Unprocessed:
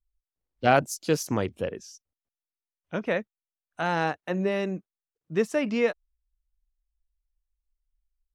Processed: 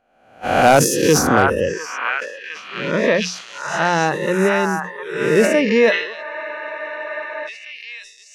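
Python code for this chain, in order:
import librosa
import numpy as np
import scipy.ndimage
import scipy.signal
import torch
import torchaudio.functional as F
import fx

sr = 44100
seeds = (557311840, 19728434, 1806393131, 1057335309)

y = fx.spec_swells(x, sr, rise_s=1.0)
y = fx.noise_reduce_blind(y, sr, reduce_db=19)
y = fx.hum_notches(y, sr, base_hz=60, count=3)
y = fx.echo_stepped(y, sr, ms=706, hz=1200.0, octaves=0.7, feedback_pct=70, wet_db=-1)
y = np.clip(10.0 ** (12.5 / 20.0) * y, -1.0, 1.0) / 10.0 ** (12.5 / 20.0)
y = fx.spec_freeze(y, sr, seeds[0], at_s=6.25, hold_s=1.22)
y = fx.sustainer(y, sr, db_per_s=82.0)
y = y * 10.0 ** (8.0 / 20.0)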